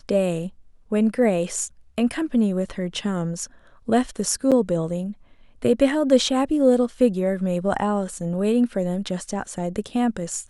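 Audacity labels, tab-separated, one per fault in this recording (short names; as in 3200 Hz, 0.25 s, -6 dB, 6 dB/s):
4.510000	4.520000	gap 7.2 ms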